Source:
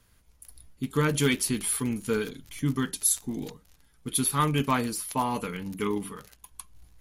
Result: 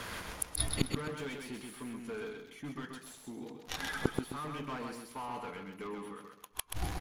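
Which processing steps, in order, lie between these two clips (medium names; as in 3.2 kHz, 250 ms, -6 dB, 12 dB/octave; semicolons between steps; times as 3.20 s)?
spectral noise reduction 7 dB; overdrive pedal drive 27 dB, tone 1.5 kHz, clips at -10 dBFS; inverted gate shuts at -30 dBFS, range -40 dB; on a send: feedback delay 130 ms, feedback 30%, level -4.5 dB; on the sum: trim +18 dB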